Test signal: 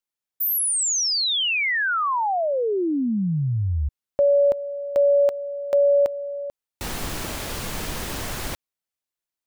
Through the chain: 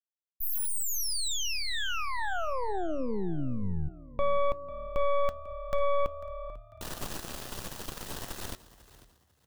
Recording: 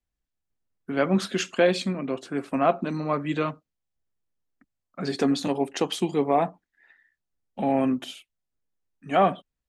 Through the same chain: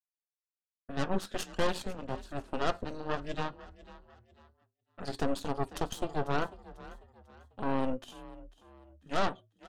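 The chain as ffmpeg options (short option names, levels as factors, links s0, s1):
-filter_complex "[0:a]aeval=exprs='0.376*(cos(1*acos(clip(val(0)/0.376,-1,1)))-cos(1*PI/2))+0.0188*(cos(3*acos(clip(val(0)/0.376,-1,1)))-cos(3*PI/2))+0.119*(cos(4*acos(clip(val(0)/0.376,-1,1)))-cos(4*PI/2))+0.0668*(cos(8*acos(clip(val(0)/0.376,-1,1)))-cos(8*PI/2))':c=same,equalizer=f=2200:w=6.1:g=-9,flanger=delay=3.8:depth=1.8:regen=-85:speed=0.22:shape=sinusoidal,asplit=4[s0][s1][s2][s3];[s1]adelay=495,afreqshift=36,volume=0.126[s4];[s2]adelay=990,afreqshift=72,volume=0.0479[s5];[s3]adelay=1485,afreqshift=108,volume=0.0182[s6];[s0][s4][s5][s6]amix=inputs=4:normalize=0,agate=range=0.0224:threshold=0.00251:ratio=3:release=336:detection=peak,volume=0.422"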